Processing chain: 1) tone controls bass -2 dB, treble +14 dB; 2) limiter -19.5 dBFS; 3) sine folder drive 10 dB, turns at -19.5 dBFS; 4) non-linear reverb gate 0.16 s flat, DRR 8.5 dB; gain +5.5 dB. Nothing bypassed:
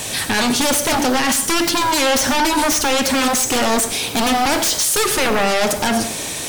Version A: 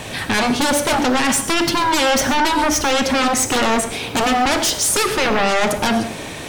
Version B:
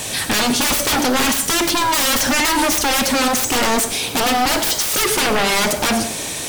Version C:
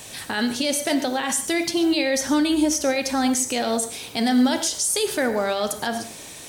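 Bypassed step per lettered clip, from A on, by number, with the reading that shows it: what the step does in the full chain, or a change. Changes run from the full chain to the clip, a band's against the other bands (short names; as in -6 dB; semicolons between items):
1, 8 kHz band -3.0 dB; 2, mean gain reduction 2.5 dB; 3, crest factor change +2.5 dB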